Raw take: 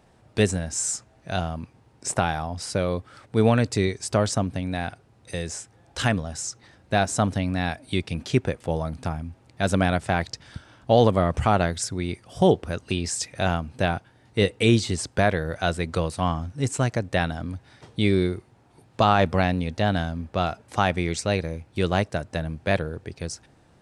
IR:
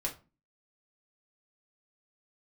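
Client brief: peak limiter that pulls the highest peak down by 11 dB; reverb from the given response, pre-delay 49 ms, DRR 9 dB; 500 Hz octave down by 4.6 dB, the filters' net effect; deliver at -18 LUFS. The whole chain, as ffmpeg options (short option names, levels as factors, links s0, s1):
-filter_complex "[0:a]equalizer=f=500:t=o:g=-6,alimiter=limit=0.141:level=0:latency=1,asplit=2[s0][s1];[1:a]atrim=start_sample=2205,adelay=49[s2];[s1][s2]afir=irnorm=-1:irlink=0,volume=0.266[s3];[s0][s3]amix=inputs=2:normalize=0,volume=4.22"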